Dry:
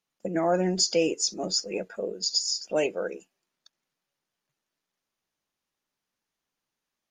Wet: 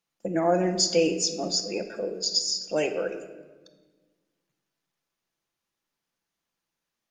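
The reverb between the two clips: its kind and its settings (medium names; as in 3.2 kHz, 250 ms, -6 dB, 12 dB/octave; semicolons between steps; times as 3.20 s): simulated room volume 1100 m³, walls mixed, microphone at 0.75 m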